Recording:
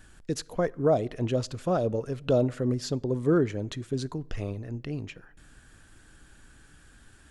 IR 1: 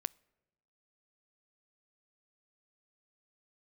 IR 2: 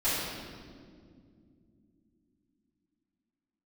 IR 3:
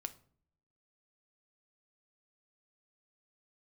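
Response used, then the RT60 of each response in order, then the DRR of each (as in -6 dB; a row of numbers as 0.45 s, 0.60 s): 1; 0.95 s, no single decay rate, 0.55 s; 24.0 dB, -14.5 dB, 9.0 dB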